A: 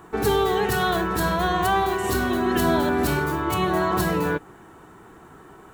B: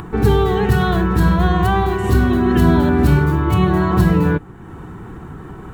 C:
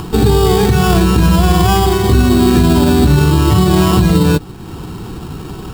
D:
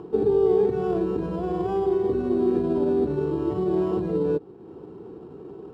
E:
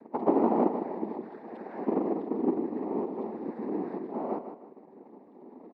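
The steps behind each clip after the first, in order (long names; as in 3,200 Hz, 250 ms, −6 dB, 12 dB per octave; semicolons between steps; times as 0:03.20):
bass and treble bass +14 dB, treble −7 dB; notch filter 640 Hz, Q 12; upward compression, threshold −27 dBFS; level +2 dB
high-shelf EQ 2,800 Hz −11 dB; brickwall limiter −9 dBFS, peak gain reduction 7 dB; sample-rate reduction 4,100 Hz, jitter 0%; level +7 dB
resonant band-pass 430 Hz, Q 2.9; level −4.5 dB
three sine waves on the formant tracks; cochlear-implant simulation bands 6; repeating echo 156 ms, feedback 34%, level −9.5 dB; level −7.5 dB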